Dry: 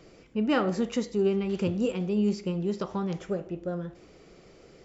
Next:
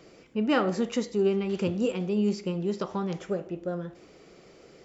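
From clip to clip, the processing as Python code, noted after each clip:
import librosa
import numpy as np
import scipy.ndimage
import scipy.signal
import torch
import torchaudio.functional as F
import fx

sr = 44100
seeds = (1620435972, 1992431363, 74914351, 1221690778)

y = fx.low_shelf(x, sr, hz=92.0, db=-11.5)
y = y * 10.0 ** (1.5 / 20.0)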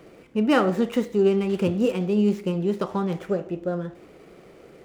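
y = scipy.signal.medfilt(x, 9)
y = y * 10.0 ** (5.0 / 20.0)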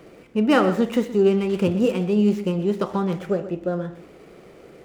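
y = x + 10.0 ** (-14.0 / 20.0) * np.pad(x, (int(124 * sr / 1000.0), 0))[:len(x)]
y = y * 10.0 ** (2.0 / 20.0)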